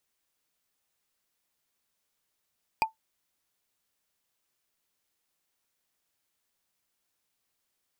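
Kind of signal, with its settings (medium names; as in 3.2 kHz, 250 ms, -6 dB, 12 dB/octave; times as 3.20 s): wood hit, lowest mode 885 Hz, decay 0.13 s, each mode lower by 4 dB, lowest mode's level -17 dB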